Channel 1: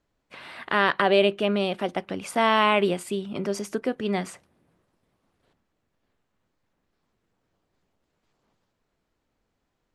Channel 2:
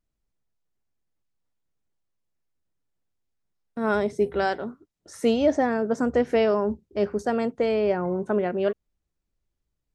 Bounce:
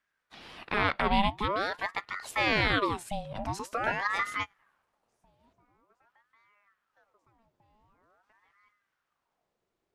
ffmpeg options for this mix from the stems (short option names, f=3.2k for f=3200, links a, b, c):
-filter_complex "[0:a]volume=-3dB,asplit=2[a][b];[1:a]bandreject=f=50:t=h:w=6,bandreject=f=100:t=h:w=6,bandreject=f=150:t=h:w=6,bandreject=f=200:t=h:w=6,bandreject=f=250:t=h:w=6,bandreject=f=300:t=h:w=6,bandreject=f=350:t=h:w=6,bandreject=f=400:t=h:w=6,acompressor=threshold=-26dB:ratio=6,volume=0.5dB[c];[b]apad=whole_len=438789[d];[c][d]sidechaingate=range=-36dB:threshold=-52dB:ratio=16:detection=peak[e];[a][e]amix=inputs=2:normalize=0,aeval=exprs='val(0)*sin(2*PI*1000*n/s+1000*0.65/0.46*sin(2*PI*0.46*n/s))':c=same"